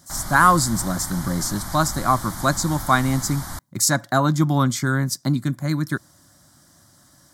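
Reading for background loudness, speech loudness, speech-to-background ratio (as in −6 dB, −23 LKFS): −32.5 LKFS, −21.0 LKFS, 11.5 dB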